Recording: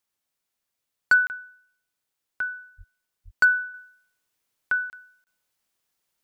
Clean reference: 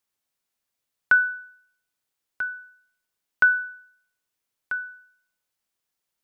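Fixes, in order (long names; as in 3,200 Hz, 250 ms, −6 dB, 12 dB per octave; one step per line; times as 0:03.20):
clipped peaks rebuilt −11.5 dBFS
0:02.77–0:02.89: high-pass filter 140 Hz 24 dB per octave
0:03.24–0:03.36: high-pass filter 140 Hz 24 dB per octave
repair the gap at 0:01.27/0:04.90/0:05.24, 29 ms
0:03.74: level correction −4.5 dB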